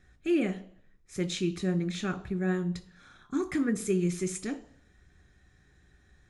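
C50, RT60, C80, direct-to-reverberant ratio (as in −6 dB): 16.0 dB, 0.55 s, 19.5 dB, 7.5 dB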